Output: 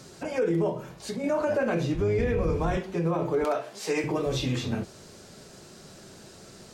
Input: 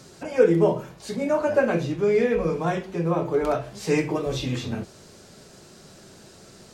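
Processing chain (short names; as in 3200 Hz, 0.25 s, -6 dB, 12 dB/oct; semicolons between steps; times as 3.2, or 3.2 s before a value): 1.94–2.77 octaver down 2 oct, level +2 dB; 3.44–4.04 HPF 350 Hz 12 dB/oct; limiter -18 dBFS, peak gain reduction 12 dB; 0.69–1.24 compressor 5:1, threshold -30 dBFS, peak gain reduction 6 dB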